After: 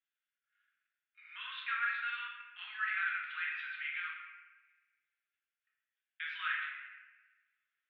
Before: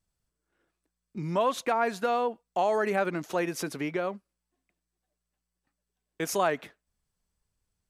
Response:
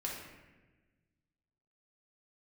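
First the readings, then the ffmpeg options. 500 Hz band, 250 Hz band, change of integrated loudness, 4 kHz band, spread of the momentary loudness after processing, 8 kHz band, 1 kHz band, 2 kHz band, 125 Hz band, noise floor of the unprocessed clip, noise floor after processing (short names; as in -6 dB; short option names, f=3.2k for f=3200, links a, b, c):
under -40 dB, under -40 dB, -8.5 dB, -3.5 dB, 16 LU, under -40 dB, -13.0 dB, +1.5 dB, under -40 dB, -85 dBFS, under -85 dBFS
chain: -filter_complex "[0:a]asuperpass=centerf=2200:order=12:qfactor=0.99[a];[1:a]atrim=start_sample=2205[b];[a][b]afir=irnorm=-1:irlink=0"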